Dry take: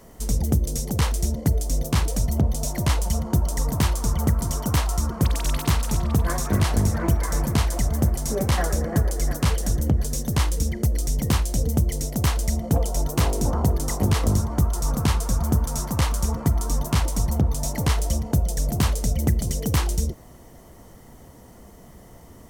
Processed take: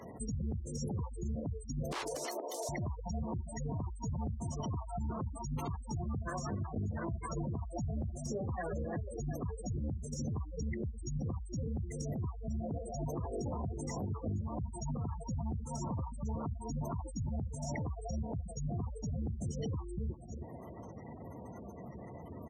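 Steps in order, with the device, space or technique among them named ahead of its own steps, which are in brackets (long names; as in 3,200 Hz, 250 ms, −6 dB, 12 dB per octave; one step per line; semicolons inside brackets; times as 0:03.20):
0:01.92–0:02.69: Butterworth high-pass 320 Hz 48 dB per octave
single-tap delay 322 ms −18 dB
gate on every frequency bin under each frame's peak −20 dB strong
broadcast voice chain (high-pass filter 76 Hz 24 dB per octave; de-essing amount 90%; downward compressor 5 to 1, threshold −34 dBFS, peak gain reduction 16 dB; parametric band 3,500 Hz +5 dB 2.8 octaves; brickwall limiter −30.5 dBFS, peak gain reduction 9 dB)
level +1 dB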